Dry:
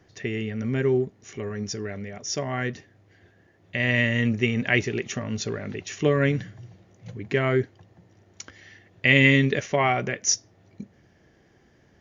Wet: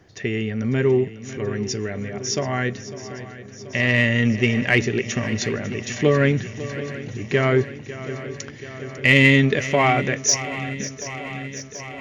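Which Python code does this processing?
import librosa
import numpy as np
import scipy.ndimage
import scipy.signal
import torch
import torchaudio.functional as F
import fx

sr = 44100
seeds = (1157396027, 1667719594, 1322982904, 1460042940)

p1 = 10.0 ** (-15.0 / 20.0) * np.tanh(x / 10.0 ** (-15.0 / 20.0))
p2 = x + F.gain(torch.from_numpy(p1), -3.0).numpy()
y = fx.echo_swing(p2, sr, ms=732, ratio=3, feedback_pct=68, wet_db=-15.0)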